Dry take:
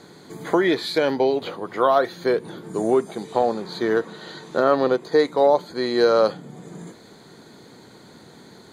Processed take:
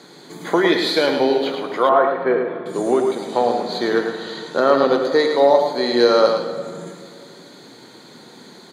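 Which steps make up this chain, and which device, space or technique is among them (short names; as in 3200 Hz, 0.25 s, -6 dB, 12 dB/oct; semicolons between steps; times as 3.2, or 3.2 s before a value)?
PA in a hall (HPF 190 Hz 12 dB/oct; bell 3800 Hz +4 dB 1.7 oct; echo 0.108 s -6 dB; reverb RT60 2.0 s, pre-delay 3 ms, DRR 6 dB); 1.89–2.66 LPF 2300 Hz 24 dB/oct; gain +1.5 dB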